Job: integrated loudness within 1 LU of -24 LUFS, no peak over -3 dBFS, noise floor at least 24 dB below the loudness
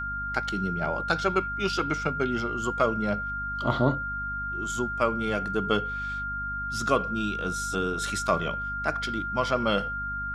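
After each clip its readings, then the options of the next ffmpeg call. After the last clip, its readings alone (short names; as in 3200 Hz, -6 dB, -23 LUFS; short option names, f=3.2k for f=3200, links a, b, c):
hum 50 Hz; harmonics up to 250 Hz; hum level -36 dBFS; steady tone 1400 Hz; tone level -30 dBFS; loudness -28.0 LUFS; peak -10.0 dBFS; loudness target -24.0 LUFS
-> -af "bandreject=f=50:t=h:w=6,bandreject=f=100:t=h:w=6,bandreject=f=150:t=h:w=6,bandreject=f=200:t=h:w=6,bandreject=f=250:t=h:w=6"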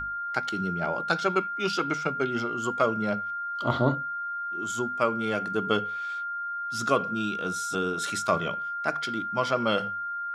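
hum none; steady tone 1400 Hz; tone level -30 dBFS
-> -af "bandreject=f=1.4k:w=30"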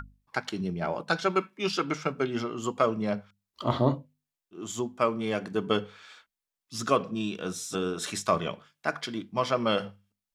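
steady tone none; loudness -30.0 LUFS; peak -10.0 dBFS; loudness target -24.0 LUFS
-> -af "volume=6dB"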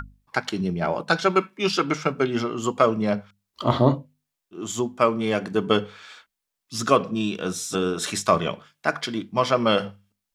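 loudness -24.0 LUFS; peak -4.0 dBFS; noise floor -83 dBFS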